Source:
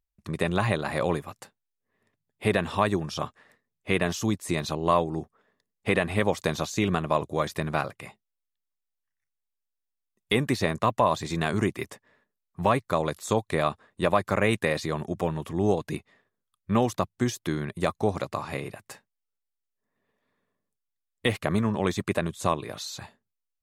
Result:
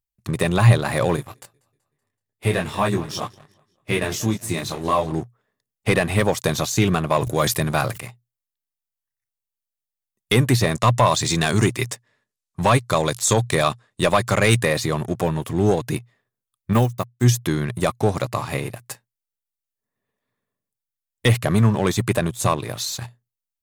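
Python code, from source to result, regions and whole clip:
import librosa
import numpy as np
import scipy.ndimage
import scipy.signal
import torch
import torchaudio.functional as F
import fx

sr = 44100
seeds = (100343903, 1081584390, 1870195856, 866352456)

y = fx.chain(x, sr, fx.echo_feedback(ms=189, feedback_pct=49, wet_db=-18.0),
    fx.detune_double(cents=15), at=(1.16, 5.12))
y = fx.chain(y, sr, fx.highpass(hz=62.0, slope=12),
    fx.high_shelf(hz=4900.0, db=5.0),
    fx.sustainer(db_per_s=110.0), at=(7.17, 8.0))
y = fx.chain(y, sr, fx.lowpass(hz=7700.0, slope=12),
    fx.high_shelf(hz=3300.0, db=10.5), at=(10.71, 14.63))
y = fx.chain(y, sr, fx.sample_gate(floor_db=-42.5),
    fx.high_shelf(hz=9700.0, db=11.0),
    fx.upward_expand(threshold_db=-36.0, expansion=2.5), at=(16.73, 17.24))
y = fx.high_shelf(y, sr, hz=6600.0, db=10.0)
y = fx.leveller(y, sr, passes=2)
y = fx.peak_eq(y, sr, hz=120.0, db=13.5, octaves=0.25)
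y = F.gain(torch.from_numpy(y), -1.5).numpy()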